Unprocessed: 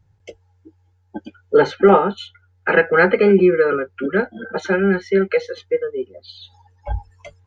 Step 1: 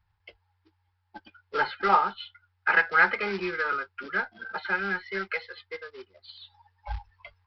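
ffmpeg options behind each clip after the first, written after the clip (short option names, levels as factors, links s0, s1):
-af "aresample=11025,acrusher=bits=6:mode=log:mix=0:aa=0.000001,aresample=44100,equalizer=f=125:t=o:w=1:g=-10,equalizer=f=250:t=o:w=1:g=-11,equalizer=f=500:t=o:w=1:g=-12,equalizer=f=1000:t=o:w=1:g=8,equalizer=f=2000:t=o:w=1:g=4,volume=0.398"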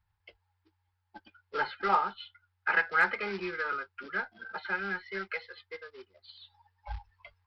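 -af "asoftclip=type=hard:threshold=0.335,volume=0.562"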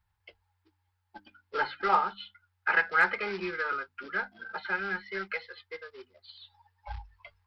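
-af "bandreject=f=50:t=h:w=6,bandreject=f=100:t=h:w=6,bandreject=f=150:t=h:w=6,bandreject=f=200:t=h:w=6,bandreject=f=250:t=h:w=6,bandreject=f=300:t=h:w=6,volume=1.19"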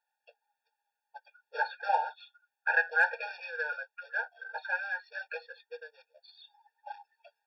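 -af "equalizer=f=760:w=1.5:g=2.5,afftfilt=real='re*eq(mod(floor(b*sr/1024/470),2),1)':imag='im*eq(mod(floor(b*sr/1024/470),2),1)':win_size=1024:overlap=0.75,volume=0.891"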